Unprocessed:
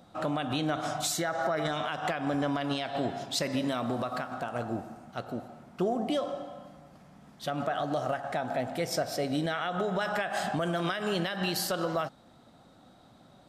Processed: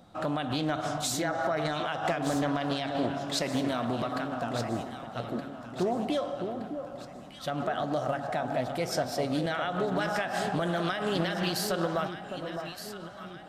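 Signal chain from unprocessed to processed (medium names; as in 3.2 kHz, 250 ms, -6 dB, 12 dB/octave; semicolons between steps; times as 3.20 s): bass shelf 70 Hz +5.5 dB; echo whose repeats swap between lows and highs 610 ms, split 1.1 kHz, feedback 69%, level -7 dB; loudspeaker Doppler distortion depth 0.2 ms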